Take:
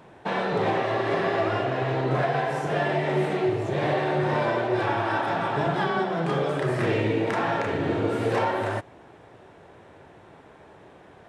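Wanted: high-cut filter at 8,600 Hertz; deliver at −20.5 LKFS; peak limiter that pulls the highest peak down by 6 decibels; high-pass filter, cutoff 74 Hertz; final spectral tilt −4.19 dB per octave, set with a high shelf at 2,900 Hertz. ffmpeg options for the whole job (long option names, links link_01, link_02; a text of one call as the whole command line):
ffmpeg -i in.wav -af "highpass=74,lowpass=8600,highshelf=frequency=2900:gain=7,volume=5.5dB,alimiter=limit=-11dB:level=0:latency=1" out.wav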